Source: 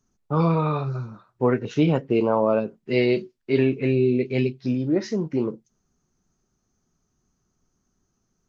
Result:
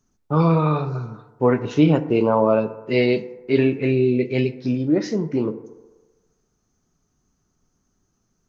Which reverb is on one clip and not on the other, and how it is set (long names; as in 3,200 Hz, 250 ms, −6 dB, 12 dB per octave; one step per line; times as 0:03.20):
feedback delay network reverb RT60 1.3 s, low-frequency decay 0.7×, high-frequency decay 0.35×, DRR 11.5 dB
level +2.5 dB